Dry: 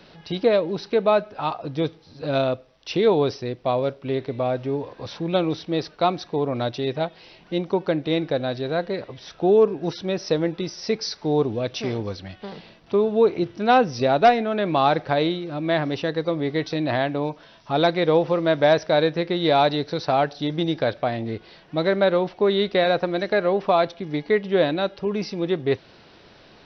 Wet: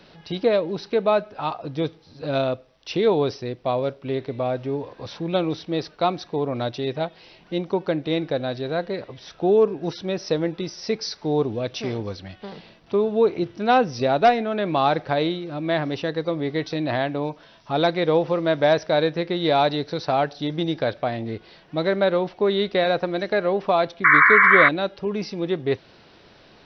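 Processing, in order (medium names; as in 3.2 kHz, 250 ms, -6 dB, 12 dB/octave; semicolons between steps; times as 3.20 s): painted sound noise, 24.04–24.69 s, 1–2.3 kHz -13 dBFS; trim -1 dB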